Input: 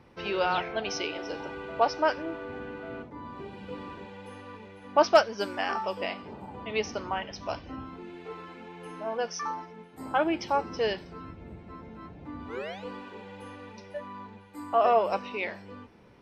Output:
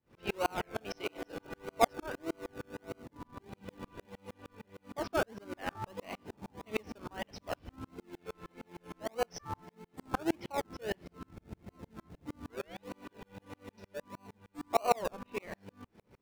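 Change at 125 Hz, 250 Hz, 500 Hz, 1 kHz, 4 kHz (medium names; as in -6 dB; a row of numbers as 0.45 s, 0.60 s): -3.0 dB, -5.0 dB, -9.0 dB, -8.5 dB, -9.5 dB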